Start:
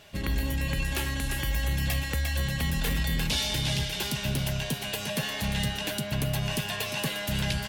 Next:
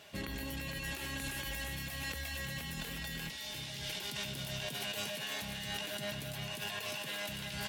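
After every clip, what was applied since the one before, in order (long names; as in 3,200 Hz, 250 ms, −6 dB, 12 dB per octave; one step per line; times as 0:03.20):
high-pass filter 200 Hz 6 dB per octave
compressor whose output falls as the input rises −36 dBFS, ratio −1
delay with a high-pass on its return 334 ms, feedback 49%, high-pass 1,600 Hz, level −5 dB
level −5.5 dB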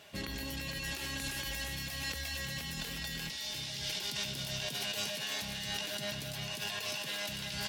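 dynamic equaliser 5,100 Hz, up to +7 dB, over −58 dBFS, Q 1.3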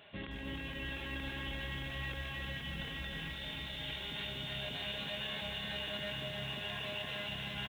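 downsampling to 8,000 Hz
in parallel at +1 dB: brickwall limiter −34.5 dBFS, peak gain reduction 10 dB
on the sum: feedback echo at a low word length 311 ms, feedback 80%, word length 9 bits, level −4 dB
level −8 dB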